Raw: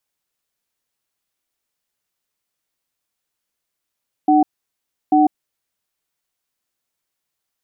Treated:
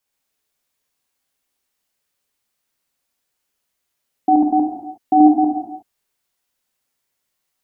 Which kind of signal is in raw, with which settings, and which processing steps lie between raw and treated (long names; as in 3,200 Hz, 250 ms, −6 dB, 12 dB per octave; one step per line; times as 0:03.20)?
tone pair in a cadence 302 Hz, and 751 Hz, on 0.15 s, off 0.69 s, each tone −12.5 dBFS 1.64 s
delay that plays each chunk backwards 121 ms, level −3 dB
reverb whose tail is shaped and stops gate 390 ms falling, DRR 1 dB